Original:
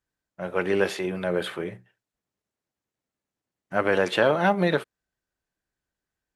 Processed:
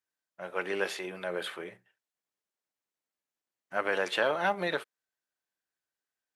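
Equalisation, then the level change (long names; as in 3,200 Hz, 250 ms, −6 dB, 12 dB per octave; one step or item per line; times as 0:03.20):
high-pass filter 740 Hz 6 dB per octave
−3.5 dB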